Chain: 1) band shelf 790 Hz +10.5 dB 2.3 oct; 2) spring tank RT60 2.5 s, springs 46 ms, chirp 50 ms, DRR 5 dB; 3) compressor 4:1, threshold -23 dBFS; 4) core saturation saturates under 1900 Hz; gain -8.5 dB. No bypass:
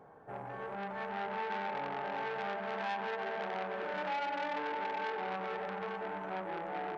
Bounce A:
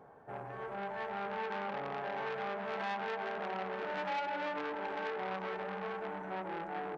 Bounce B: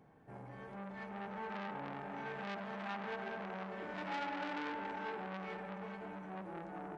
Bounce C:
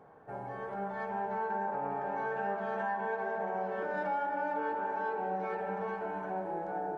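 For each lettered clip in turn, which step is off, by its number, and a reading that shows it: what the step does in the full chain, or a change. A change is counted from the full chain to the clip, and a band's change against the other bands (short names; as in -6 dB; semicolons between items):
2, 1 kHz band -1.5 dB; 1, 125 Hz band +6.5 dB; 4, crest factor change -2.0 dB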